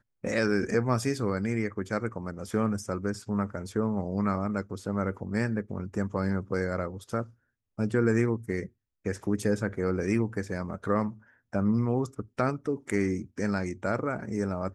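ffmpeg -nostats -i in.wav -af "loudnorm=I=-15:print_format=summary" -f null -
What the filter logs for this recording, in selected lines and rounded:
Input Integrated:    -30.2 LUFS
Input True Peak:     -11.7 dBTP
Input LRA:             1.6 LU
Input Threshold:     -40.3 LUFS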